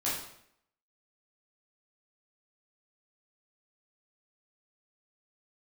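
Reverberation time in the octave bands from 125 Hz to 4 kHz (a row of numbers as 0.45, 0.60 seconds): 0.70, 0.75, 0.70, 0.70, 0.65, 0.60 seconds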